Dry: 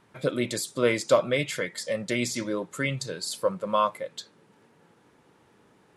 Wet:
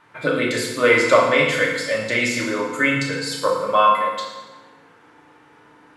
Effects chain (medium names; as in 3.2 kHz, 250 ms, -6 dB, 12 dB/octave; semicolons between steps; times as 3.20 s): peaking EQ 1.5 kHz +13.5 dB 2.8 oct; FDN reverb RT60 1.2 s, low-frequency decay 1.35×, high-frequency decay 0.85×, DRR -3 dB; trim -4 dB